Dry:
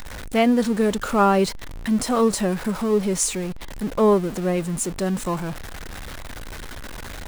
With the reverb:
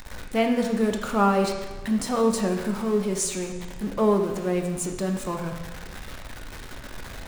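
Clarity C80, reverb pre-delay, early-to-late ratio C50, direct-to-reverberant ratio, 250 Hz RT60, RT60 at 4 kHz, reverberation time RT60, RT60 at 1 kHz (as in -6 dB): 7.5 dB, 8 ms, 6.0 dB, 3.0 dB, 1.2 s, 1.2 s, 1.2 s, 1.2 s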